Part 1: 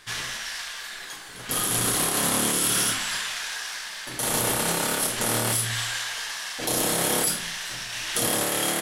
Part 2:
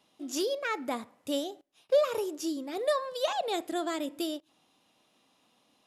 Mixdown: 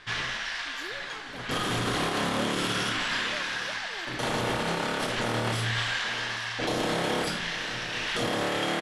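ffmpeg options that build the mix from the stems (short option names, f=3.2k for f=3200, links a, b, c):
-filter_complex "[0:a]lowpass=3.5k,volume=2.5dB,asplit=2[a][b];[b]volume=-16.5dB[c];[1:a]adelay=450,volume=-14dB[d];[c]aecho=0:1:840:1[e];[a][d][e]amix=inputs=3:normalize=0,alimiter=limit=-18.5dB:level=0:latency=1:release=44"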